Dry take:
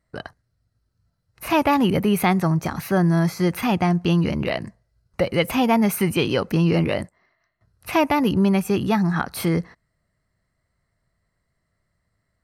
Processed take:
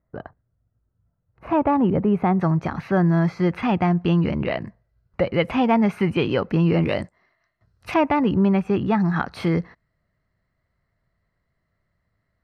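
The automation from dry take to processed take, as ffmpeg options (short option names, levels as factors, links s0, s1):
-af "asetnsamples=n=441:p=0,asendcmd='2.4 lowpass f 2600;6.83 lowpass f 5700;7.94 lowpass f 2200;9 lowpass f 3600',lowpass=1100"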